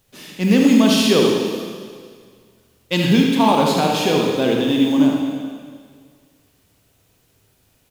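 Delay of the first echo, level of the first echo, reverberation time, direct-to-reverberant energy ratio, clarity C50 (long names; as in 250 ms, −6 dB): 77 ms, −7.0 dB, 1.9 s, −0.5 dB, 0.5 dB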